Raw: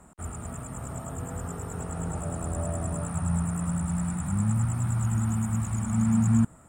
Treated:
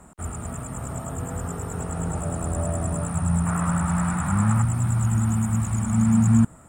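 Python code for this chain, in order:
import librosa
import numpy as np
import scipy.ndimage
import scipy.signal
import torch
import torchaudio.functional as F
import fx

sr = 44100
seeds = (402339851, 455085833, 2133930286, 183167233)

y = fx.peak_eq(x, sr, hz=1300.0, db=9.5, octaves=2.0, at=(3.46, 4.62))
y = F.gain(torch.from_numpy(y), 4.5).numpy()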